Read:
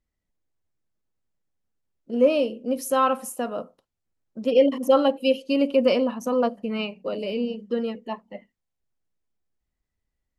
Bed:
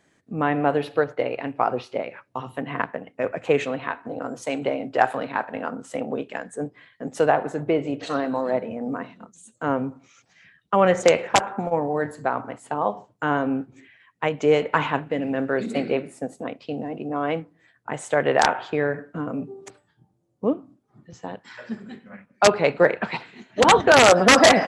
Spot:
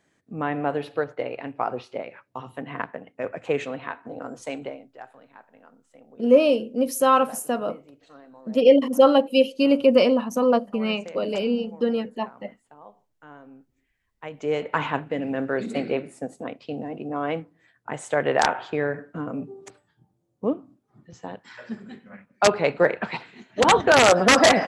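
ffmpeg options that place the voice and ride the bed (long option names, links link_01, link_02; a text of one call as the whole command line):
ffmpeg -i stem1.wav -i stem2.wav -filter_complex "[0:a]adelay=4100,volume=3dB[link_01];[1:a]volume=17dB,afade=type=out:start_time=4.49:duration=0.39:silence=0.112202,afade=type=in:start_time=14.1:duration=0.8:silence=0.0841395[link_02];[link_01][link_02]amix=inputs=2:normalize=0" out.wav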